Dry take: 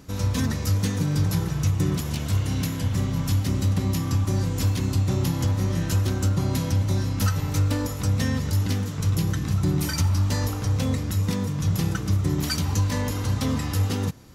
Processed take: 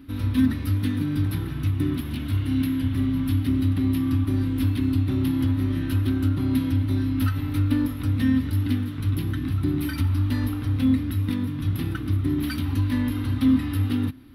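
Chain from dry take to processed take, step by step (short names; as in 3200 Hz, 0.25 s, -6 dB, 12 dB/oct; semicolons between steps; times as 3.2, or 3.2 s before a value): EQ curve 110 Hz 0 dB, 190 Hz -9 dB, 260 Hz +12 dB, 470 Hz -11 dB, 940 Hz -7 dB, 1400 Hz -1 dB, 3700 Hz -1 dB, 7000 Hz -27 dB, 10000 Hz -4 dB; gain -1 dB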